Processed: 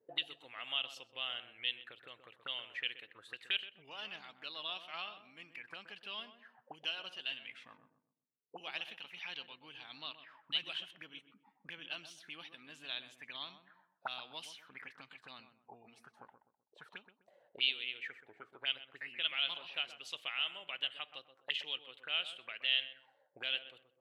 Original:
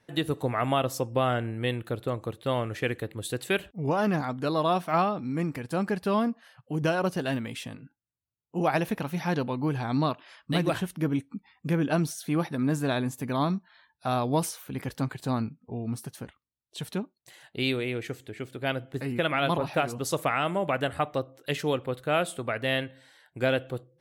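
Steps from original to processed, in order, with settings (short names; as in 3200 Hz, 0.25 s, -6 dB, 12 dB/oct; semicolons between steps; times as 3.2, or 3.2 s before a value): dynamic EQ 4000 Hz, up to +4 dB, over -46 dBFS, Q 1.7; auto-wah 420–3000 Hz, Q 7.5, up, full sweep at -27 dBFS; on a send: darkening echo 0.127 s, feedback 37%, low-pass 1000 Hz, level -8.5 dB; on the sum: gain +3.5 dB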